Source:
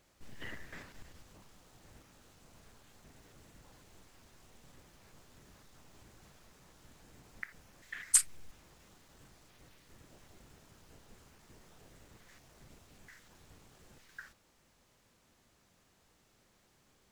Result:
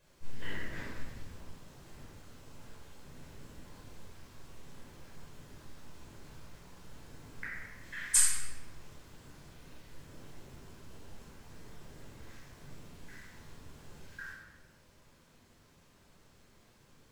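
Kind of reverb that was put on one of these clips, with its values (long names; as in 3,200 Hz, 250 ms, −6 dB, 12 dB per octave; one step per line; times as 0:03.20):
rectangular room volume 870 cubic metres, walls mixed, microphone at 5.2 metres
level −5 dB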